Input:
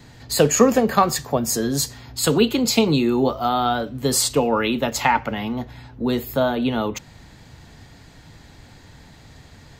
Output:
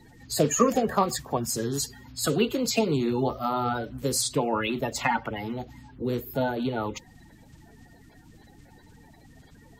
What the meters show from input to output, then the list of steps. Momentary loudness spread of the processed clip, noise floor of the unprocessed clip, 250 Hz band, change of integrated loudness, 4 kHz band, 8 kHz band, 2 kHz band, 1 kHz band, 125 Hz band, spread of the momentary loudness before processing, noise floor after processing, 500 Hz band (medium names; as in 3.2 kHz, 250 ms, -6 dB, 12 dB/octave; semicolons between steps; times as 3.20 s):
10 LU, -47 dBFS, -7.5 dB, -7.0 dB, -8.0 dB, -6.5 dB, -6.5 dB, -6.5 dB, -5.0 dB, 10 LU, -54 dBFS, -6.5 dB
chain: coarse spectral quantiser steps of 30 dB; trim -6 dB